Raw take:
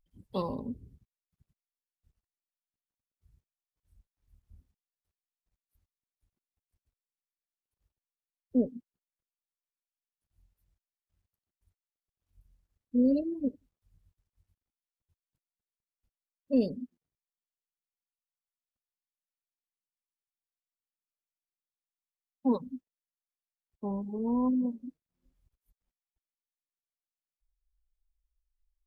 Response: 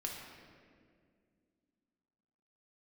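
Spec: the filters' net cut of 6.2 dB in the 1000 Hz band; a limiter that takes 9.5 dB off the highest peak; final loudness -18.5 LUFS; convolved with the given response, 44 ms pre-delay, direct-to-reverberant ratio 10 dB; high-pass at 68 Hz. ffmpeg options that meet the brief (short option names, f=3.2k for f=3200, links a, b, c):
-filter_complex "[0:a]highpass=68,equalizer=f=1k:t=o:g=-7,alimiter=level_in=1.5dB:limit=-24dB:level=0:latency=1,volume=-1.5dB,asplit=2[a][b];[1:a]atrim=start_sample=2205,adelay=44[c];[b][c]afir=irnorm=-1:irlink=0,volume=-10.5dB[d];[a][d]amix=inputs=2:normalize=0,volume=18.5dB"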